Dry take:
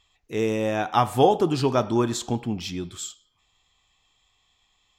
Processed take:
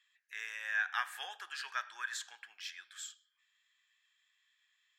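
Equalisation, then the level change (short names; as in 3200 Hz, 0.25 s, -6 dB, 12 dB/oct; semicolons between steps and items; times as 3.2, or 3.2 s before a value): ladder high-pass 1600 Hz, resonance 85%; +1.0 dB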